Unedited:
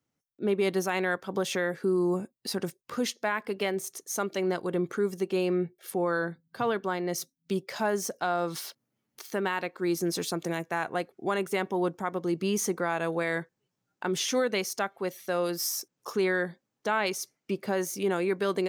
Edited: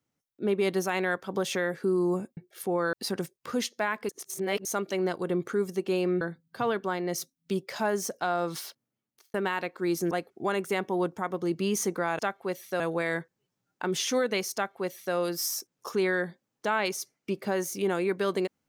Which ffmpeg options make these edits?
ffmpeg -i in.wav -filter_complex "[0:a]asplit=10[link_01][link_02][link_03][link_04][link_05][link_06][link_07][link_08][link_09][link_10];[link_01]atrim=end=2.372[link_11];[link_02]atrim=start=5.648:end=6.212[link_12];[link_03]atrim=start=2.368:end=3.532[link_13];[link_04]atrim=start=3.528:end=4.092,asetpts=PTS-STARTPTS,areverse[link_14];[link_05]atrim=start=4.088:end=5.652[link_15];[link_06]atrim=start=6.208:end=9.34,asetpts=PTS-STARTPTS,afade=type=out:start_time=2.332:duration=0.8[link_16];[link_07]atrim=start=9.34:end=10.112,asetpts=PTS-STARTPTS,afade=type=in:duration=0.004:curve=hsin[link_17];[link_08]atrim=start=10.928:end=13.012[link_18];[link_09]atrim=start=14.748:end=15.362[link_19];[link_10]atrim=start=13.008[link_20];[link_11][link_12]acrossfade=duration=0.004:curve1=hsin:curve2=hsin[link_21];[link_21][link_13]acrossfade=duration=0.004:curve1=hsin:curve2=hsin[link_22];[link_22][link_14]acrossfade=duration=0.004:curve1=hsin:curve2=hsin[link_23];[link_23][link_15]acrossfade=duration=0.004:curve1=hsin:curve2=hsin[link_24];[link_16][link_17]concat=n=2:v=0:a=1[link_25];[link_24][link_25]acrossfade=duration=0.004:curve1=hsin:curve2=hsin[link_26];[link_26][link_18]acrossfade=duration=0.004:curve1=hsin:curve2=hsin[link_27];[link_27][link_19]acrossfade=duration=0.004:curve1=hsin:curve2=hsin[link_28];[link_28][link_20]acrossfade=duration=0.004:curve1=hsin:curve2=hsin" out.wav

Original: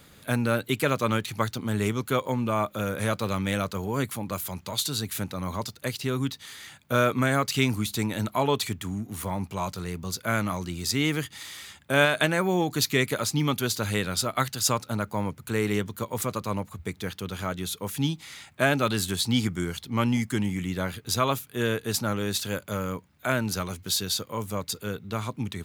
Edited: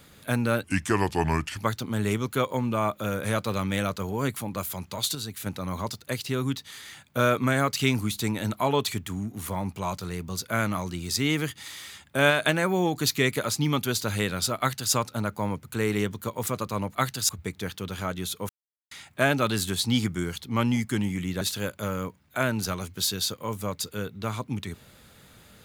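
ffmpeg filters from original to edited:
ffmpeg -i in.wav -filter_complex "[0:a]asplit=10[link_01][link_02][link_03][link_04][link_05][link_06][link_07][link_08][link_09][link_10];[link_01]atrim=end=0.644[link_11];[link_02]atrim=start=0.64:end=1.32,asetpts=PTS-STARTPTS,asetrate=32193,aresample=44100,atrim=end_sample=41079,asetpts=PTS-STARTPTS[link_12];[link_03]atrim=start=1.316:end=4.902[link_13];[link_04]atrim=start=4.898:end=5.212,asetpts=PTS-STARTPTS,volume=-5dB[link_14];[link_05]atrim=start=5.208:end=16.702[link_15];[link_06]atrim=start=14.338:end=14.682[link_16];[link_07]atrim=start=16.698:end=17.9,asetpts=PTS-STARTPTS,afade=type=out:start_time=1.198:duration=0.004:curve=hsin[link_17];[link_08]atrim=start=17.9:end=18.32,asetpts=PTS-STARTPTS,volume=0[link_18];[link_09]atrim=start=18.32:end=20.822,asetpts=PTS-STARTPTS,afade=type=in:duration=0.004:curve=hsin[link_19];[link_10]atrim=start=22.298[link_20];[link_11][link_12]acrossfade=duration=0.004:curve1=hsin:curve2=hsin[link_21];[link_21][link_13]acrossfade=duration=0.004:curve1=hsin:curve2=hsin[link_22];[link_22][link_14]acrossfade=duration=0.004:curve1=hsin:curve2=hsin[link_23];[link_23][link_15]acrossfade=duration=0.004:curve1=hsin:curve2=hsin[link_24];[link_24][link_16]acrossfade=duration=0.004:curve1=hsin:curve2=hsin[link_25];[link_17][link_18][link_19]concat=n=3:v=0:a=1[link_26];[link_25][link_26]acrossfade=duration=0.004:curve1=hsin:curve2=hsin[link_27];[link_27][link_20]acrossfade=duration=0.004:curve1=hsin:curve2=hsin" out.wav

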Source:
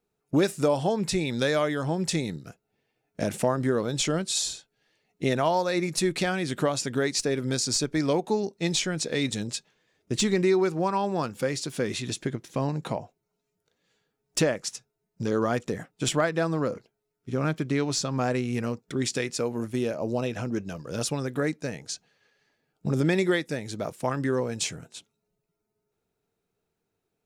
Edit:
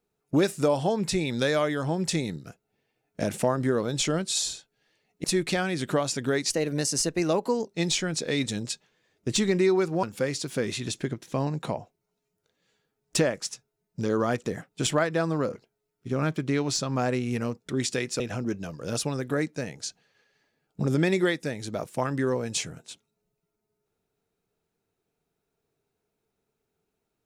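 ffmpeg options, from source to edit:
ffmpeg -i in.wav -filter_complex "[0:a]asplit=6[link_01][link_02][link_03][link_04][link_05][link_06];[link_01]atrim=end=5.242[link_07];[link_02]atrim=start=5.928:end=7.194[link_08];[link_03]atrim=start=7.19:end=8.49,asetpts=PTS-STARTPTS,asetrate=49833,aresample=44100[link_09];[link_04]atrim=start=8.486:end=10.872[link_10];[link_05]atrim=start=11.248:end=19.422[link_11];[link_06]atrim=start=20.258[link_12];[link_07][link_08]acrossfade=duration=0.004:curve1=hsin:curve2=hsin[link_13];[link_13][link_09]acrossfade=duration=0.004:curve1=hsin:curve2=hsin[link_14];[link_14][link_10]acrossfade=duration=0.004:curve1=hsin:curve2=hsin[link_15];[link_15][link_11]acrossfade=duration=0.004:curve1=hsin:curve2=hsin[link_16];[link_16][link_12]acrossfade=duration=0.004:curve1=hsin:curve2=hsin" out.wav

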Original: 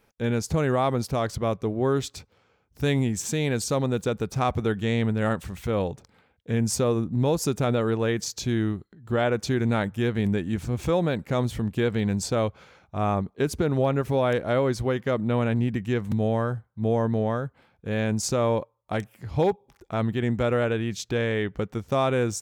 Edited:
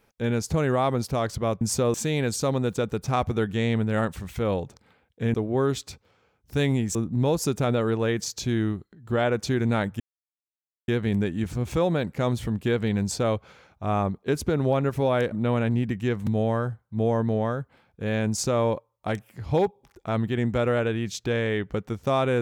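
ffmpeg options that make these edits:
ffmpeg -i in.wav -filter_complex "[0:a]asplit=7[link_01][link_02][link_03][link_04][link_05][link_06][link_07];[link_01]atrim=end=1.612[link_08];[link_02]atrim=start=6.618:end=6.952[link_09];[link_03]atrim=start=3.218:end=6.622[link_10];[link_04]atrim=start=1.608:end=3.222[link_11];[link_05]atrim=start=6.948:end=10,asetpts=PTS-STARTPTS,afade=type=out:start_time=3.048:duration=0.004:curve=hsin,apad=pad_dur=0.88[link_12];[link_06]atrim=start=10:end=14.442,asetpts=PTS-STARTPTS,afade=type=in:duration=0.004:curve=hsin[link_13];[link_07]atrim=start=15.168[link_14];[link_08][link_09]acrossfade=duration=0.004:curve1=hsin:curve2=hsin[link_15];[link_15][link_10]acrossfade=duration=0.004:curve1=hsin:curve2=hsin[link_16];[link_16][link_11]acrossfade=duration=0.004:curve1=hsin:curve2=hsin[link_17];[link_12][link_13]concat=n=2:v=0:a=1[link_18];[link_17][link_18]acrossfade=duration=0.004:curve1=hsin:curve2=hsin[link_19];[link_19][link_14]acrossfade=duration=0.004:curve1=hsin:curve2=hsin" out.wav

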